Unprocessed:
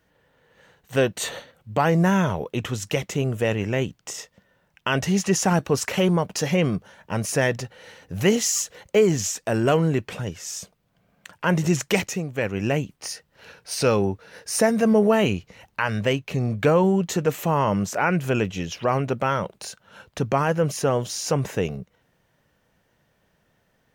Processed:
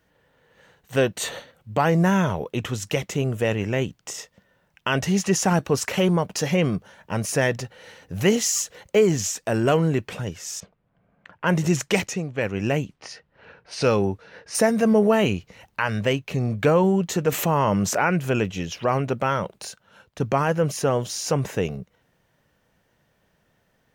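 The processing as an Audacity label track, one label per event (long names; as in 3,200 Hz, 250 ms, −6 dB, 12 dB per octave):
10.600000	14.550000	low-pass that shuts in the quiet parts closes to 1,800 Hz, open at −20 dBFS
17.320000	18.070000	envelope flattener amount 50%
19.660000	20.200000	fade out quadratic, to −7.5 dB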